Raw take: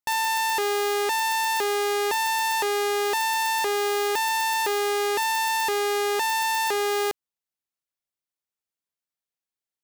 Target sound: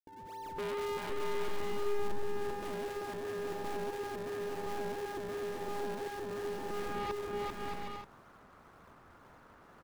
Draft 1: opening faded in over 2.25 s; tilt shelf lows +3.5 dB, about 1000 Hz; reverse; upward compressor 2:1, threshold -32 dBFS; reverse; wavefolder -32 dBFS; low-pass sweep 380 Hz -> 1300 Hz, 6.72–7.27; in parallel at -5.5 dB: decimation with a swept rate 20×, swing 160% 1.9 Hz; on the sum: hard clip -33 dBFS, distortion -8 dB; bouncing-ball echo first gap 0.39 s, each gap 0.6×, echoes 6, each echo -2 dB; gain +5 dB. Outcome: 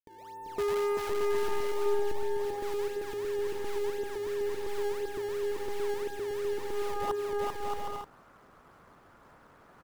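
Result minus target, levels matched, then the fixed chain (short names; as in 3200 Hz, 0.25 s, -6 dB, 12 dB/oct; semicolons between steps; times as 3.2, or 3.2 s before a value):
decimation with a swept rate: distortion -9 dB; hard clip: distortion -4 dB
opening faded in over 2.25 s; tilt shelf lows +3.5 dB, about 1000 Hz; reverse; upward compressor 2:1, threshold -32 dBFS; reverse; wavefolder -32 dBFS; low-pass sweep 380 Hz -> 1300 Hz, 6.72–7.27; in parallel at -5.5 dB: decimation with a swept rate 42×, swing 160% 1.9 Hz; on the sum: hard clip -41 dBFS, distortion -4 dB; bouncing-ball echo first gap 0.39 s, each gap 0.6×, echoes 6, each echo -2 dB; gain +5 dB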